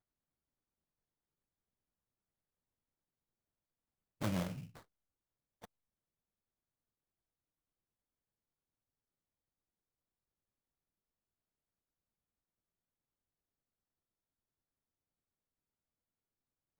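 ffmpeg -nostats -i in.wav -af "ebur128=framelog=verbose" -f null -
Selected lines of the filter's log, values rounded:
Integrated loudness:
  I:         -40.1 LUFS
  Threshold: -52.8 LUFS
Loudness range:
  LRA:         6.0 LU
  Threshold: -67.1 LUFS
  LRA low:   -52.4 LUFS
  LRA high:  -46.4 LUFS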